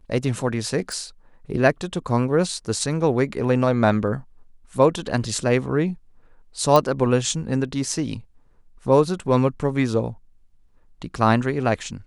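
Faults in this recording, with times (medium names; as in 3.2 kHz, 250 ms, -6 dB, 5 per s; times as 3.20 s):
0.92 s: pop
6.76 s: pop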